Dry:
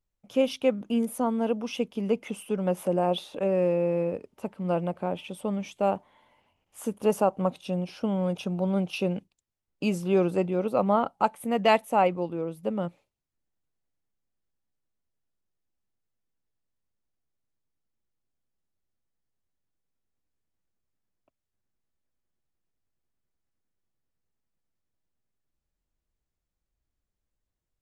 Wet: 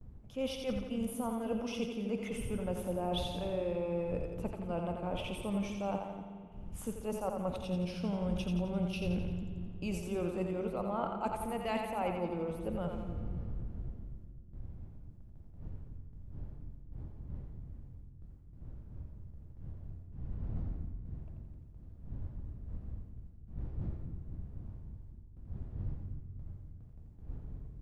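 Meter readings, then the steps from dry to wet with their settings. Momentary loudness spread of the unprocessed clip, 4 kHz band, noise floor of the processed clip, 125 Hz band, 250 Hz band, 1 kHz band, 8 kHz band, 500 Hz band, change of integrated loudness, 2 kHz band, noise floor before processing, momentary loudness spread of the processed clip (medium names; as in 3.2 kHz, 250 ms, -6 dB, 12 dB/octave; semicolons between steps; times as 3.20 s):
8 LU, -6.0 dB, -52 dBFS, -3.0 dB, -7.5 dB, -11.0 dB, -5.5 dB, -10.5 dB, -11.0 dB, -9.5 dB, -85 dBFS, 17 LU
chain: wind noise 87 Hz -41 dBFS; gate with hold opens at -47 dBFS; peaking EQ 400 Hz -2 dB; reverse; compression 6:1, threshold -34 dBFS, peak gain reduction 16 dB; reverse; two-band feedback delay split 370 Hz, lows 248 ms, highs 86 ms, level -5 dB; spring tank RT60 2.1 s, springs 45 ms, chirp 70 ms, DRR 9.5 dB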